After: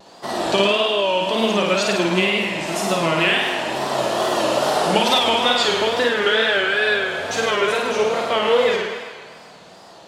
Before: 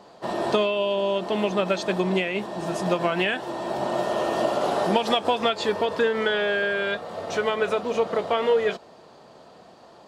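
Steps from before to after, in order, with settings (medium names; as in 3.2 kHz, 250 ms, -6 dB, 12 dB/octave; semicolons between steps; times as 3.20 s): treble shelf 2.2 kHz +10.5 dB; flutter echo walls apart 9 m, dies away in 1.1 s; wow and flutter 120 cents; feedback echo behind a band-pass 130 ms, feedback 60%, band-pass 1.5 kHz, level -7.5 dB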